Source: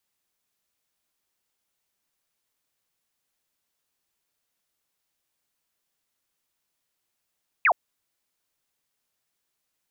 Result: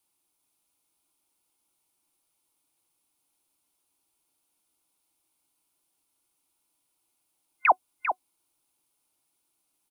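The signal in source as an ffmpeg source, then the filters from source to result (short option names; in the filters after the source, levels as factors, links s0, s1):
-f lavfi -i "aevalsrc='0.168*clip(t/0.002,0,1)*clip((0.07-t)/0.002,0,1)*sin(2*PI*2700*0.07/log(600/2700)*(exp(log(600/2700)*t/0.07)-1))':d=0.07:s=44100"
-af "superequalizer=6b=2.51:9b=1.78:11b=0.398:16b=2.51,aecho=1:1:397:0.398"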